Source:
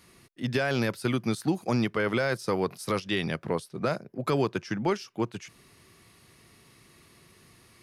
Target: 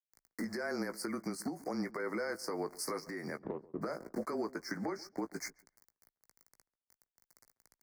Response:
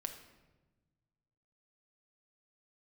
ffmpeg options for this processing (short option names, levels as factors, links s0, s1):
-filter_complex "[0:a]highpass=f=240:w=0.5412,highpass=f=240:w=1.3066,aeval=exprs='val(0)*gte(abs(val(0)),0.00398)':c=same,acompressor=threshold=0.01:ratio=12,asplit=2[s0][s1];[s1]adelay=17,volume=0.316[s2];[s0][s2]amix=inputs=2:normalize=0,afreqshift=-25,alimiter=level_in=4.47:limit=0.0631:level=0:latency=1:release=154,volume=0.224,asuperstop=centerf=3100:order=12:qfactor=1.4,asplit=3[s3][s4][s5];[s3]afade=t=out:st=3.4:d=0.02[s6];[s4]adynamicsmooth=sensitivity=3:basefreq=590,afade=t=in:st=3.4:d=0.02,afade=t=out:st=3.81:d=0.02[s7];[s5]afade=t=in:st=3.81:d=0.02[s8];[s6][s7][s8]amix=inputs=3:normalize=0,asettb=1/sr,asplit=3[s9][s10][s11];[s9]atrim=end=4.774[s12];[s10]atrim=start=4.77:end=5.19,asetpts=PTS-STARTPTS,afade=t=in:d=0.004:c=qsin,afade=t=out:st=0.416:d=0.004:c=qsin,highshelf=f=6600:g=-7.5[s13];[s11]atrim=start=5.186[s14];[s12][s13]acrossfade=d=0.004:c1=hsin:c2=qsin[s15];[s15][s14]acrossfade=d=0.004:c1=qsin:c2=hsin,asplit=2[s16][s17];[s17]adelay=138,lowpass=f=1100:p=1,volume=0.112,asplit=2[s18][s19];[s19]adelay=138,lowpass=f=1100:p=1,volume=0.21[s20];[s16][s18][s20]amix=inputs=3:normalize=0,volume=2.99"